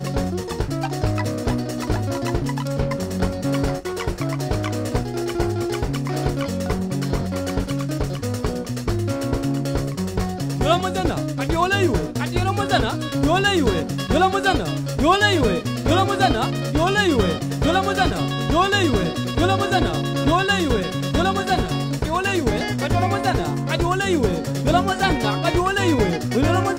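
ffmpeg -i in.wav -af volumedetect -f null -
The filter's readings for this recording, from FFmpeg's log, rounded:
mean_volume: -20.7 dB
max_volume: -3.7 dB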